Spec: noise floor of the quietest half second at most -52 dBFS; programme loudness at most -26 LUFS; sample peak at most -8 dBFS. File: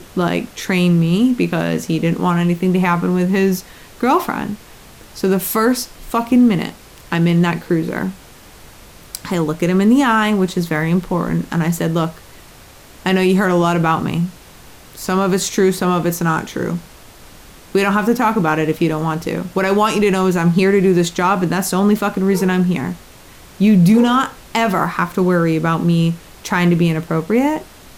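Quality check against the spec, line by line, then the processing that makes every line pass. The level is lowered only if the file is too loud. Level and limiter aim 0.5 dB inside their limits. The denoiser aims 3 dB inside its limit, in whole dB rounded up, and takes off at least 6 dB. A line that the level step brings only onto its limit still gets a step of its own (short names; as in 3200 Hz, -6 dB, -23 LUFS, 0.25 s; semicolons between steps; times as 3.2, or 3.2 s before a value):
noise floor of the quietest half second -42 dBFS: fail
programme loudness -16.5 LUFS: fail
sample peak -4.5 dBFS: fail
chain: denoiser 6 dB, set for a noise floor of -42 dBFS; gain -10 dB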